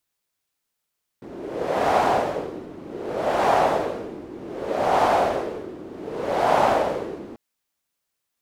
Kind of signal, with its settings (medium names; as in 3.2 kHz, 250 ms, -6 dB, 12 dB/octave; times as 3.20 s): wind-like swept noise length 6.14 s, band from 330 Hz, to 740 Hz, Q 2.9, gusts 4, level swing 19 dB